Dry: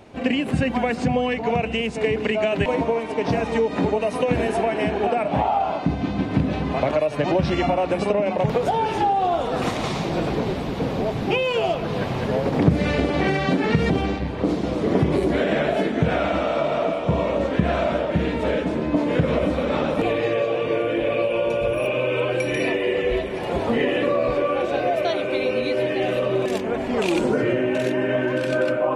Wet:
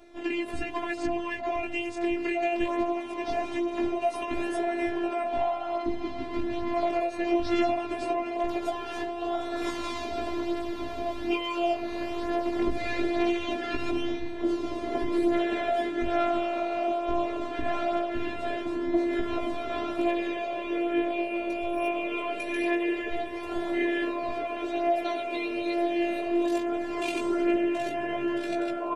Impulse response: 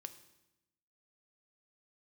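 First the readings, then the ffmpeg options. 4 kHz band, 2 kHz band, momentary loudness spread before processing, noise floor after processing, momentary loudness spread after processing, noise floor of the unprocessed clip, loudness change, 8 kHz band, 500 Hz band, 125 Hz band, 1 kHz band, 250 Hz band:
-7.5 dB, -7.0 dB, 4 LU, -35 dBFS, 6 LU, -28 dBFS, -7.0 dB, no reading, -8.5 dB, -23.0 dB, -6.0 dB, -5.0 dB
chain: -filter_complex "[0:a]asplit=2[s0][s1];[s1]aecho=0:1:340:0.0668[s2];[s0][s2]amix=inputs=2:normalize=0,afftfilt=real='hypot(re,im)*cos(PI*b)':imag='0':win_size=512:overlap=0.75,flanger=delay=15:depth=5.8:speed=0.21"

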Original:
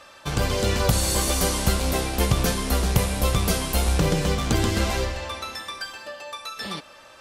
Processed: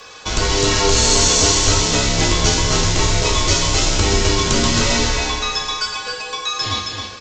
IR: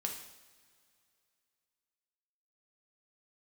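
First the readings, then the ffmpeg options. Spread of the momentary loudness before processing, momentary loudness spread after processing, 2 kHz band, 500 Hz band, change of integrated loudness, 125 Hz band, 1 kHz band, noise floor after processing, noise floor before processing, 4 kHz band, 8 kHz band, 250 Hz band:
12 LU, 10 LU, +8.5 dB, +6.0 dB, +7.5 dB, +3.0 dB, +7.5 dB, -34 dBFS, -48 dBFS, +12.5 dB, +12.0 dB, +4.5 dB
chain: -filter_complex "[0:a]aresample=16000,asoftclip=type=tanh:threshold=0.188,aresample=44100,aecho=1:1:269:0.531,crystalizer=i=2.5:c=0[s0];[1:a]atrim=start_sample=2205[s1];[s0][s1]afir=irnorm=-1:irlink=0,afreqshift=-94,volume=2"

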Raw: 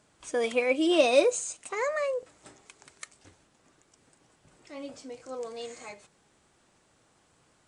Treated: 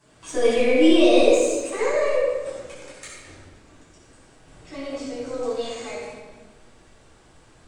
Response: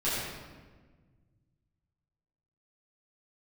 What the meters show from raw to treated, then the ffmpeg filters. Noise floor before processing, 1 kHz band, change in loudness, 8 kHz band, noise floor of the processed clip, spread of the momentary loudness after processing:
-67 dBFS, +4.5 dB, +7.0 dB, +3.5 dB, -54 dBFS, 23 LU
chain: -filter_complex "[0:a]asubboost=boost=3.5:cutoff=61,acrossover=split=790|2100[s0][s1][s2];[s0]acompressor=threshold=0.0562:ratio=4[s3];[s1]acompressor=threshold=0.00251:ratio=4[s4];[s2]acompressor=threshold=0.0158:ratio=4[s5];[s3][s4][s5]amix=inputs=3:normalize=0,asplit=2[s6][s7];[s7]aeval=exprs='clip(val(0),-1,0.00891)':c=same,volume=0.316[s8];[s6][s8]amix=inputs=2:normalize=0[s9];[1:a]atrim=start_sample=2205[s10];[s9][s10]afir=irnorm=-1:irlink=0,volume=0.891"

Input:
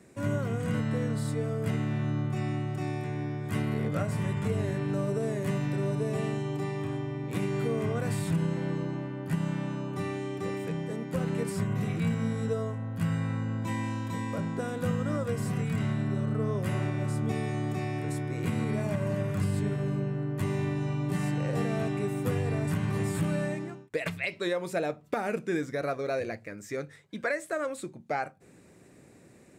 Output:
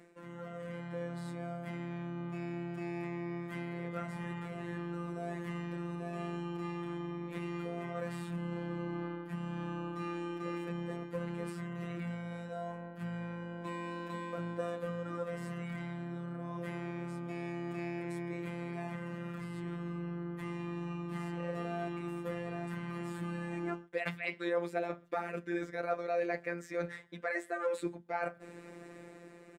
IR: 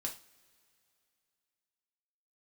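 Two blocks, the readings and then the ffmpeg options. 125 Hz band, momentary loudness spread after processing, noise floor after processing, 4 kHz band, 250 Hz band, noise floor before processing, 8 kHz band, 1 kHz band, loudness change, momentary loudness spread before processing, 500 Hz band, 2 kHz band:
-12.5 dB, 5 LU, -52 dBFS, -8.5 dB, -8.0 dB, -55 dBFS, -14.0 dB, -4.0 dB, -8.0 dB, 4 LU, -6.5 dB, -5.0 dB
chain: -filter_complex "[0:a]areverse,acompressor=threshold=0.01:ratio=12,areverse,lowshelf=f=170:g=4.5,dynaudnorm=f=170:g=9:m=2,afftfilt=real='hypot(re,im)*cos(PI*b)':imag='0':win_size=1024:overlap=0.75,bass=f=250:g=-13,treble=f=4000:g=-12,asplit=2[s0][s1];[s1]adelay=128.3,volume=0.0398,highshelf=f=4000:g=-2.89[s2];[s0][s2]amix=inputs=2:normalize=0,volume=2.11"

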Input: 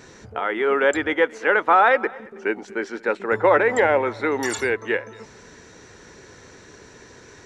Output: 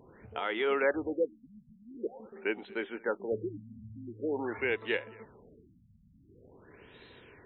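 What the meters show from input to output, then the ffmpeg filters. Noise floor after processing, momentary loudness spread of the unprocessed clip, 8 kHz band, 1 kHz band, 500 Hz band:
-62 dBFS, 12 LU, under -40 dB, -20.0 dB, -12.5 dB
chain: -af "highshelf=f=2200:t=q:w=1.5:g=6.5,afftfilt=real='re*lt(b*sr/1024,220*pow(4200/220,0.5+0.5*sin(2*PI*0.46*pts/sr)))':imag='im*lt(b*sr/1024,220*pow(4200/220,0.5+0.5*sin(2*PI*0.46*pts/sr)))':win_size=1024:overlap=0.75,volume=0.376"

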